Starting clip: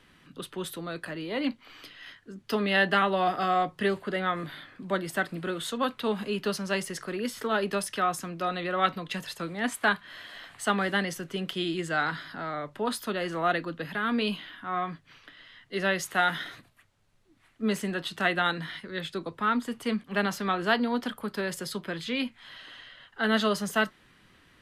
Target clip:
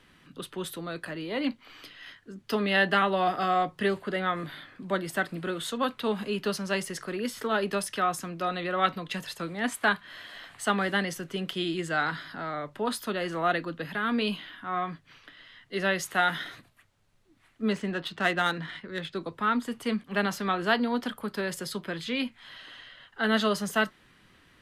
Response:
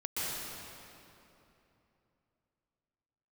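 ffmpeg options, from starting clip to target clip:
-filter_complex "[0:a]asettb=1/sr,asplit=3[s0][s1][s2];[s0]atrim=end=17.724[s3];[s1]atrim=start=17.72:end=19.15,asetpts=PTS-STARTPTS,afade=t=in:d=0.004:c=qsin,afade=t=out:st=1.426:d=0.004:c=qsin,adynamicsmooth=sensitivity=5:basefreq=4000[s4];[s2]atrim=start=19.146[s5];[s3][s4]acrossfade=d=0.004:c1=hsin:c2=qsin[s6];[s6][s5]acrossfade=d=0.004:c1=qsin:c2=hsin"

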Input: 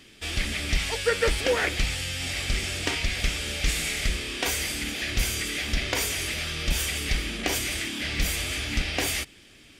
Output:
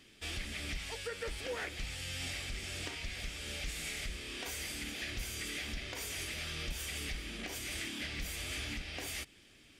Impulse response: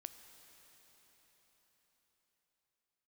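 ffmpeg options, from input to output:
-af "alimiter=limit=0.0944:level=0:latency=1:release=366,volume=0.376"

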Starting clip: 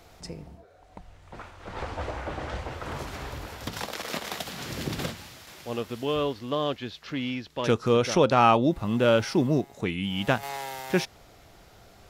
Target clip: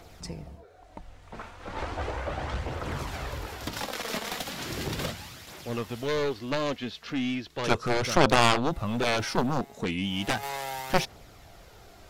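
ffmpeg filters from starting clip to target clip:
-af "aphaser=in_gain=1:out_gain=1:delay=4.7:decay=0.34:speed=0.36:type=triangular,aeval=exprs='0.501*(cos(1*acos(clip(val(0)/0.501,-1,1)))-cos(1*PI/2))+0.126*(cos(4*acos(clip(val(0)/0.501,-1,1)))-cos(4*PI/2))+0.2*(cos(7*acos(clip(val(0)/0.501,-1,1)))-cos(7*PI/2))':c=same,volume=0.631"

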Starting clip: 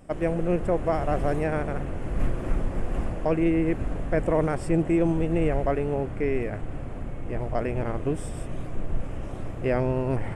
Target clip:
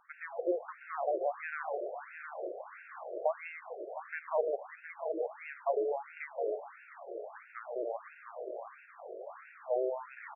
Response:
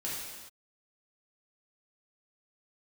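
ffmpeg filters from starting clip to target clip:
-filter_complex "[0:a]acompressor=threshold=0.0631:ratio=2.5,asplit=2[s0][s1];[s1]adelay=713,lowpass=f=4100:p=1,volume=0.398,asplit=2[s2][s3];[s3]adelay=713,lowpass=f=4100:p=1,volume=0.24,asplit=2[s4][s5];[s5]adelay=713,lowpass=f=4100:p=1,volume=0.24[s6];[s2][s4][s6]amix=inputs=3:normalize=0[s7];[s0][s7]amix=inputs=2:normalize=0,afftfilt=real='re*between(b*sr/1024,480*pow(2000/480,0.5+0.5*sin(2*PI*1.5*pts/sr))/1.41,480*pow(2000/480,0.5+0.5*sin(2*PI*1.5*pts/sr))*1.41)':imag='im*between(b*sr/1024,480*pow(2000/480,0.5+0.5*sin(2*PI*1.5*pts/sr))/1.41,480*pow(2000/480,0.5+0.5*sin(2*PI*1.5*pts/sr))*1.41)':win_size=1024:overlap=0.75"

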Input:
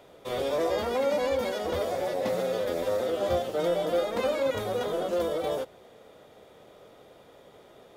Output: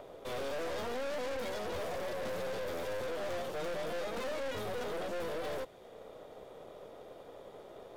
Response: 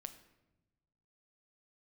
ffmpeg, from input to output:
-filter_complex "[0:a]acrossover=split=370|770|6900[s0][s1][s2][s3];[s1]acompressor=mode=upward:threshold=0.0112:ratio=2.5[s4];[s0][s4][s2][s3]amix=inputs=4:normalize=0,aeval=exprs='(tanh(63.1*val(0)+0.65)-tanh(0.65))/63.1':c=same"

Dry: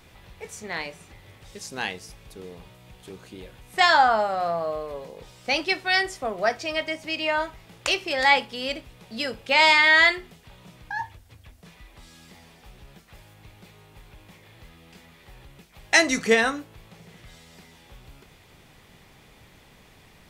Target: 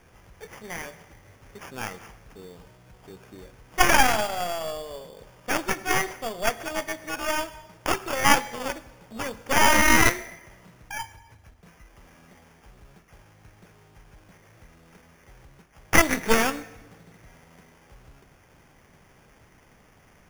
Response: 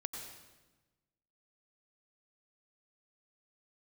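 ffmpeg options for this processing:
-filter_complex "[0:a]acrusher=samples=11:mix=1:aa=0.000001,asplit=2[s0][s1];[1:a]atrim=start_sample=2205[s2];[s1][s2]afir=irnorm=-1:irlink=0,volume=0.316[s3];[s0][s3]amix=inputs=2:normalize=0,aeval=exprs='0.841*(cos(1*acos(clip(val(0)/0.841,-1,1)))-cos(1*PI/2))+0.422*(cos(4*acos(clip(val(0)/0.841,-1,1)))-cos(4*PI/2))':c=same,volume=0.562"

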